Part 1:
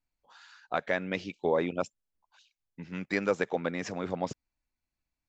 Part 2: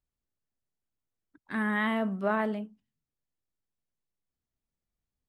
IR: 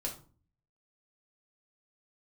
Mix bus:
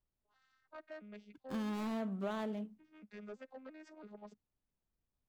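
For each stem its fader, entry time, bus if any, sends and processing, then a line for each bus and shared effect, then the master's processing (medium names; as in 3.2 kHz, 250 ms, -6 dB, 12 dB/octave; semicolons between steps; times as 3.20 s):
-12.5 dB, 0.00 s, no send, vocoder on a broken chord major triad, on G#3, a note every 335 ms; bass shelf 370 Hz -10.5 dB; saturation -29.5 dBFS, distortion -14 dB
0.0 dB, 0.00 s, no send, median filter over 25 samples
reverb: none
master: compression 4:1, threshold -37 dBFS, peak gain reduction 11 dB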